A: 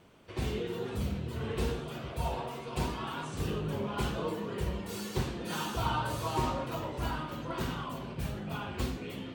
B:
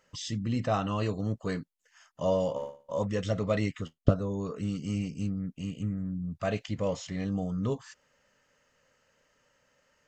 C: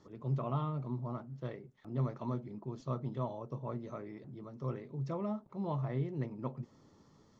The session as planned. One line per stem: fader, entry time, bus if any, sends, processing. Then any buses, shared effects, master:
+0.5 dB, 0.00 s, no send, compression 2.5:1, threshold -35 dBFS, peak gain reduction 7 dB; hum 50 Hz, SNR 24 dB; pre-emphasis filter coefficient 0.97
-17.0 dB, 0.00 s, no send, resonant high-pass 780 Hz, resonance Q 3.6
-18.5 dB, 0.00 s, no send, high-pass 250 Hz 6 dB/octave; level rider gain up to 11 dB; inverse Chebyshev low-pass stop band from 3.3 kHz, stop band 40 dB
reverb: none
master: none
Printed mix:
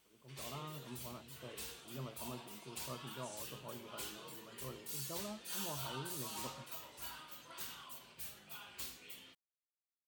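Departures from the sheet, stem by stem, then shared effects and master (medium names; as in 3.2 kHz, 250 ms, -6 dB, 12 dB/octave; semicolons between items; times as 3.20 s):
stem A: missing compression 2.5:1, threshold -35 dBFS, peak gain reduction 7 dB; stem B: muted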